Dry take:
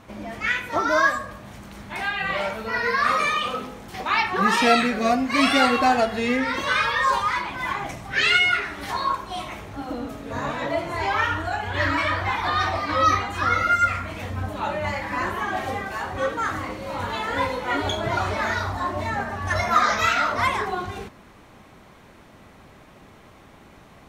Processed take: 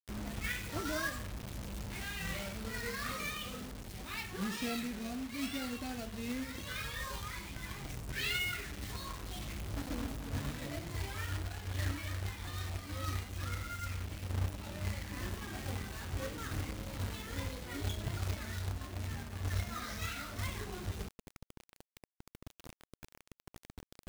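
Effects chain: amplifier tone stack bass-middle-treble 10-0-1; companded quantiser 4-bit; gain riding 2 s; trim +5 dB

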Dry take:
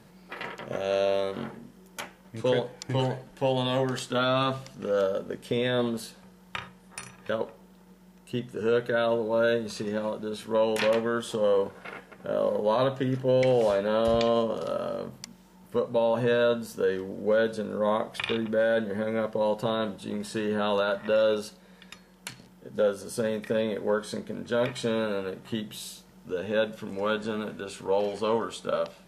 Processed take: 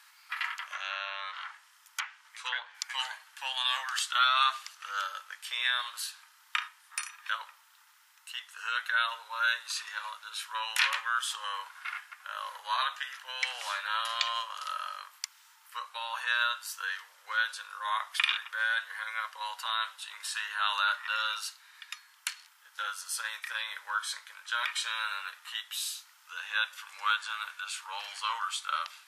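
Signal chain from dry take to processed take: steep high-pass 1.1 kHz 36 dB/octave; 0.65–2.75 s: low-pass that closes with the level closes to 2.6 kHz, closed at -35.5 dBFS; trim +5 dB

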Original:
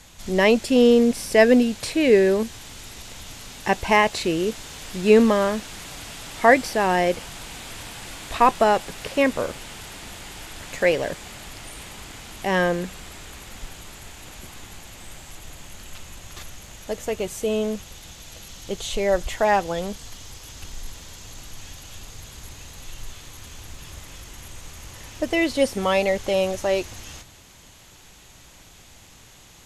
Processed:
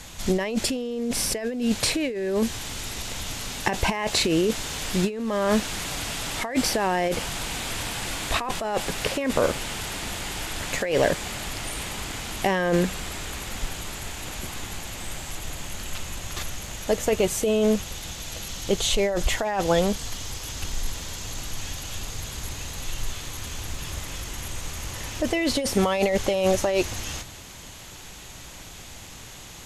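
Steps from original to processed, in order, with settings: compressor with a negative ratio -25 dBFS, ratio -1; trim +2 dB

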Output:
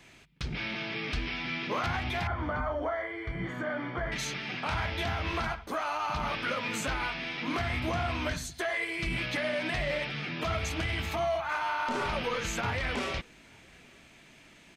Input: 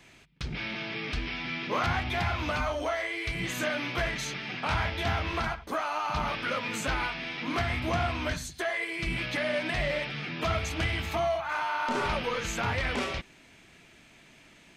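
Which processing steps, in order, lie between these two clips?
peak limiter -22 dBFS, peak gain reduction 5.5 dB; 2.27–4.12 s: Savitzky-Golay filter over 41 samples; echo from a far wall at 150 m, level -29 dB

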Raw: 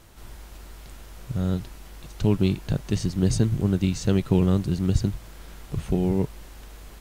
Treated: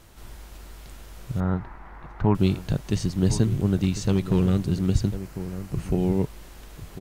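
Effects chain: 1.40–2.35 s: FFT filter 560 Hz 0 dB, 880 Hz +11 dB, 2 kHz +4 dB, 2.9 kHz -12 dB, 7.4 kHz -24 dB; echo from a far wall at 180 m, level -13 dB; 3.82–4.66 s: hard clipper -14 dBFS, distortion -20 dB; 5.16–5.99 s: peaking EQ 3.5 kHz -8 dB 0.28 oct

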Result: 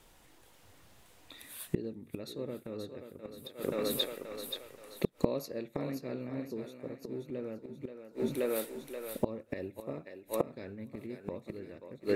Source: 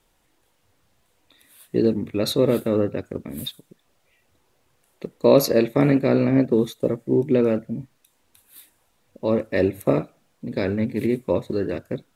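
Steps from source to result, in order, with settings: thinning echo 529 ms, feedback 44%, high-pass 410 Hz, level -5.5 dB; inverted gate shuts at -20 dBFS, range -26 dB; trim +5 dB

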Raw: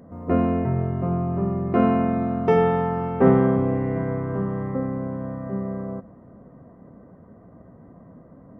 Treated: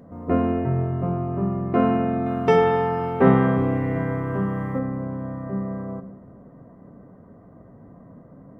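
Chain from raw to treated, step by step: 2.26–4.79 s: treble shelf 2.1 kHz +11.5 dB; simulated room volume 270 m³, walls mixed, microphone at 0.32 m

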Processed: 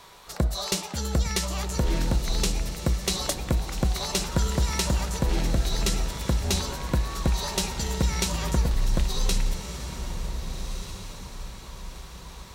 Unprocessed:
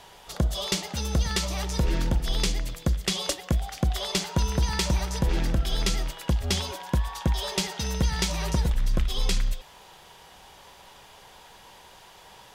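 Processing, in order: formant shift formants +3 st; echo that smears into a reverb 1534 ms, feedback 41%, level -9 dB

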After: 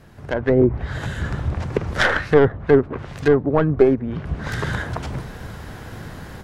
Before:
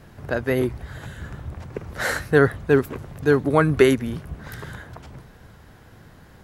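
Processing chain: tracing distortion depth 0.39 ms; low-pass that closes with the level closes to 700 Hz, closed at -18 dBFS; 2.01–4.17 s: tilt shelf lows -5.5 dB, about 1.2 kHz; level rider gain up to 14 dB; trim -1 dB

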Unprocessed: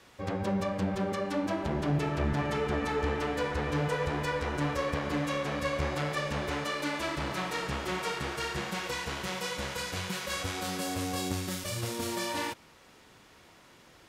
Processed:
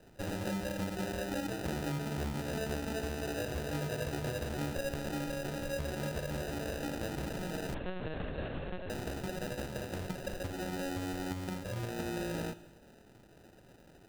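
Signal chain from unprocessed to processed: low-pass 2 kHz 12 dB/octave; compression 4:1, threshold -34 dBFS, peak gain reduction 9 dB; sample-and-hold 40×; reverberation RT60 1.1 s, pre-delay 18 ms, DRR 14 dB; 7.74–8.90 s: LPC vocoder at 8 kHz pitch kept

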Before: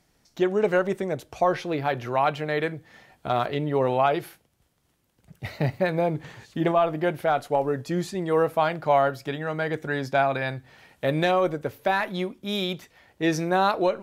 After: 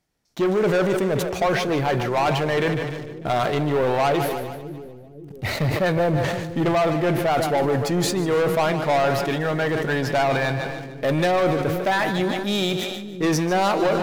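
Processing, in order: waveshaping leveller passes 3; two-band feedback delay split 400 Hz, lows 526 ms, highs 149 ms, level -10.5 dB; decay stretcher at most 35 dB/s; trim -4.5 dB

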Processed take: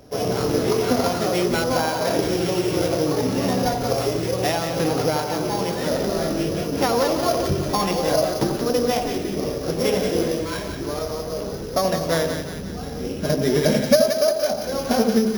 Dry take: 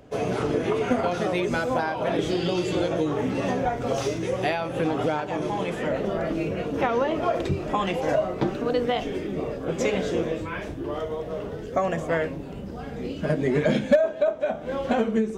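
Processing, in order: sorted samples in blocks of 8 samples; two-band feedback delay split 1.1 kHz, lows 84 ms, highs 179 ms, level -6 dB; trim +2.5 dB

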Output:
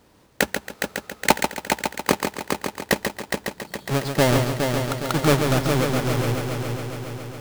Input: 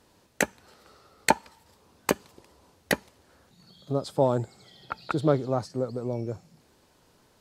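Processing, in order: square wave that keeps the level; multi-head delay 138 ms, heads first and third, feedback 70%, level -6.5 dB

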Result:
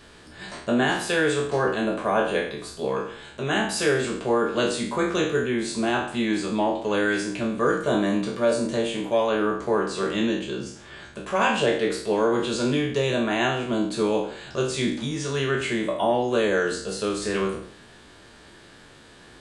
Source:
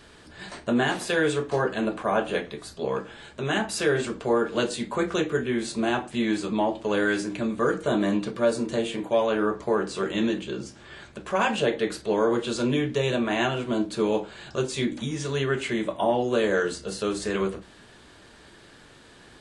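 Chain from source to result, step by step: spectral sustain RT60 0.59 s

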